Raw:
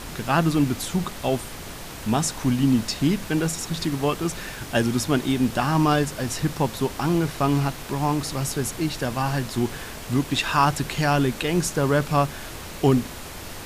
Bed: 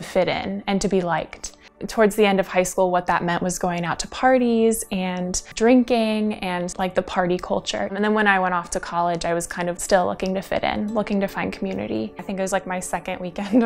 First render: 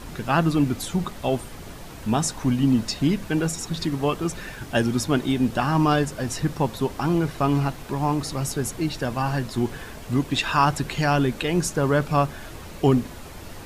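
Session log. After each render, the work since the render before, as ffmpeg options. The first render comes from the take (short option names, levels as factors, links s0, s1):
-af "afftdn=nr=7:nf=-37"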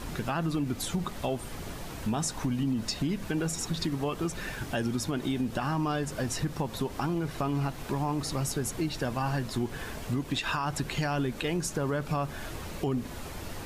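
-af "alimiter=limit=0.158:level=0:latency=1:release=93,acompressor=threshold=0.0316:ratio=2"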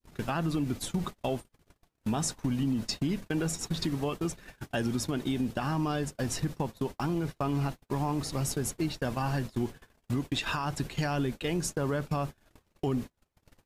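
-af "agate=range=0.00562:threshold=0.0224:ratio=16:detection=peak,adynamicequalizer=threshold=0.00562:dfrequency=1200:dqfactor=0.86:tfrequency=1200:tqfactor=0.86:attack=5:release=100:ratio=0.375:range=2:mode=cutabove:tftype=bell"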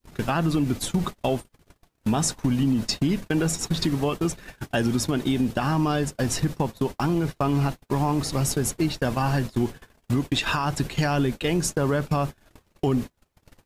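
-af "volume=2.24"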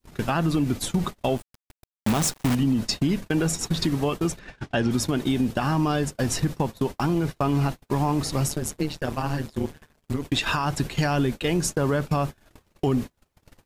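-filter_complex "[0:a]asettb=1/sr,asplit=3[s0][s1][s2];[s0]atrim=end=1.374[s3];[s1]atrim=start=1.37:end=2.55,asetpts=PTS-STARTPTS,afade=t=in:d=0.004:c=qsin,afade=t=out:st=1.176:d=0.004:c=qsin,acrusher=bits=5:dc=4:mix=0:aa=0.000001[s4];[s2]atrim=start=2.546[s5];[s3][s4]acrossfade=d=0.004:c1=hsin:c2=qsin[s6];[s6][s5]acrossfade=d=0.004:c1=qsin:c2=hsin,asettb=1/sr,asplit=3[s7][s8][s9];[s7]atrim=end=4.394[s10];[s8]atrim=start=4.39:end=4.91,asetpts=PTS-STARTPTS,afade=t=in:d=0.004:c=qsin,afade=t=out:st=0.516:d=0.004:c=qsin,lowpass=4900[s11];[s9]atrim=start=4.906[s12];[s10][s11]acrossfade=d=0.004:c1=hsin:c2=qsin[s13];[s13][s12]acrossfade=d=0.004:c1=qsin:c2=hsin,asplit=3[s14][s15][s16];[s14]afade=t=out:st=8.47:d=0.02[s17];[s15]tremolo=f=150:d=0.857,afade=t=in:st=8.47:d=0.02,afade=t=out:st=10.24:d=0.02[s18];[s16]afade=t=in:st=10.24:d=0.02[s19];[s17][s18][s19]amix=inputs=3:normalize=0"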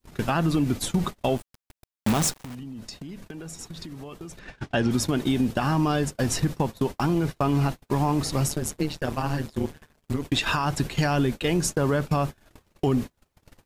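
-filter_complex "[0:a]asettb=1/sr,asplit=3[s0][s1][s2];[s0]atrim=end=2.414[s3];[s1]atrim=start=2.41:end=4.45,asetpts=PTS-STARTPTS,afade=t=in:d=0.004:c=qsin,afade=t=out:st=2.036:d=0.004:c=qsin,acompressor=threshold=0.0178:ratio=10:attack=3.2:release=140:knee=1:detection=peak[s4];[s2]atrim=start=4.446[s5];[s3][s4]acrossfade=d=0.004:c1=hsin:c2=qsin[s6];[s6][s5]acrossfade=d=0.004:c1=qsin:c2=hsin"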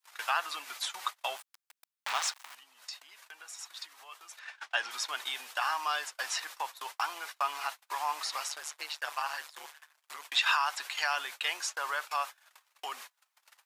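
-filter_complex "[0:a]highpass=f=940:w=0.5412,highpass=f=940:w=1.3066,acrossover=split=5800[s0][s1];[s1]acompressor=threshold=0.00562:ratio=4:attack=1:release=60[s2];[s0][s2]amix=inputs=2:normalize=0"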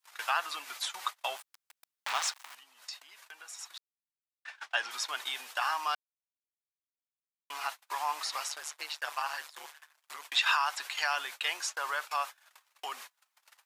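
-filter_complex "[0:a]asplit=5[s0][s1][s2][s3][s4];[s0]atrim=end=3.78,asetpts=PTS-STARTPTS,afade=t=out:st=3.776:d=0.004:c=hsin[s5];[s1]atrim=start=3.78:end=4.45,asetpts=PTS-STARTPTS,volume=0[s6];[s2]atrim=start=4.45:end=5.95,asetpts=PTS-STARTPTS,afade=t=in:d=0.004:c=hsin,afade=t=out:st=1.496:d=0.004:c=hsin[s7];[s3]atrim=start=5.95:end=7.5,asetpts=PTS-STARTPTS,volume=0[s8];[s4]atrim=start=7.5,asetpts=PTS-STARTPTS,afade=t=in:d=0.004:c=hsin[s9];[s5][s6][s7][s8][s9]concat=n=5:v=0:a=1"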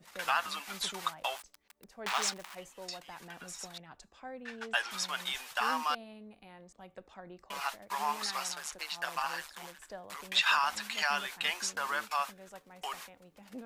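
-filter_complex "[1:a]volume=0.0376[s0];[0:a][s0]amix=inputs=2:normalize=0"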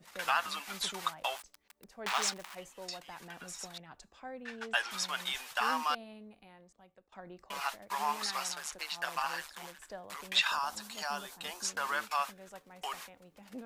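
-filter_complex "[0:a]asettb=1/sr,asplit=3[s0][s1][s2];[s0]atrim=end=10.474[s3];[s1]atrim=start=10.47:end=11.65,asetpts=PTS-STARTPTS,afade=t=in:d=0.004:c=qsin,afade=t=out:st=1.176:d=0.004:c=qsin,equalizer=f=2200:w=0.97:g=-14[s4];[s2]atrim=start=11.646[s5];[s3][s4]acrossfade=d=0.004:c1=hsin:c2=qsin[s6];[s6][s5]acrossfade=d=0.004:c1=qsin:c2=hsin,asplit=2[s7][s8];[s7]atrim=end=7.12,asetpts=PTS-STARTPTS,afade=t=out:st=6.15:d=0.97:silence=0.1[s9];[s8]atrim=start=7.12,asetpts=PTS-STARTPTS,afade=t=in:d=0.004:c=hsin:silence=0.1[s10];[s9][s10]concat=n=2:v=0:a=1"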